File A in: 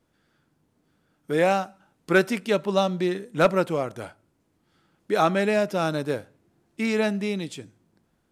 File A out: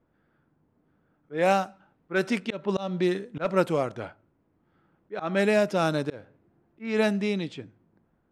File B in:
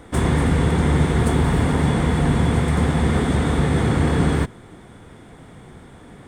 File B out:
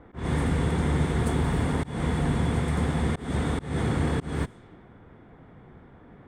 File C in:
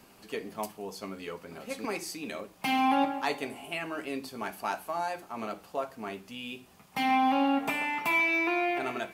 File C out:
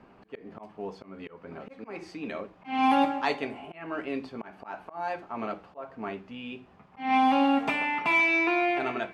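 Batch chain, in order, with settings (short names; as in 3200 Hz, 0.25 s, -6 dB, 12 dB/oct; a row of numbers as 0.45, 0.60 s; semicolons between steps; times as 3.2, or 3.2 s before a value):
auto swell 0.207 s; low-pass opened by the level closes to 1600 Hz, open at -19 dBFS; match loudness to -27 LUFS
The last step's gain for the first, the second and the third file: +0.5, -7.0, +3.0 dB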